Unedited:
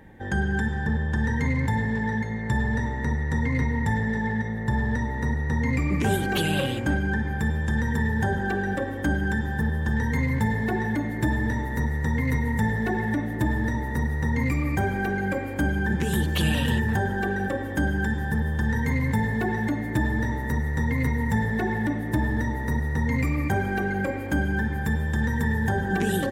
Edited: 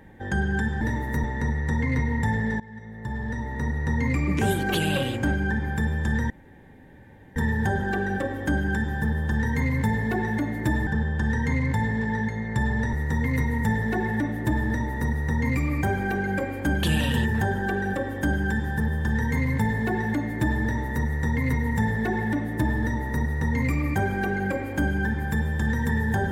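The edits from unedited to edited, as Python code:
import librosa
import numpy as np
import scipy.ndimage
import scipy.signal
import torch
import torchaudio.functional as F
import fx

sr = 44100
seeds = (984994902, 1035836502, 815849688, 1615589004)

y = fx.edit(x, sr, fx.swap(start_s=0.81, length_s=2.06, other_s=11.44, other_length_s=0.43),
    fx.fade_in_from(start_s=4.23, length_s=1.29, floor_db=-21.0),
    fx.insert_room_tone(at_s=7.93, length_s=1.06),
    fx.cut(start_s=15.77, length_s=0.6), tone=tone)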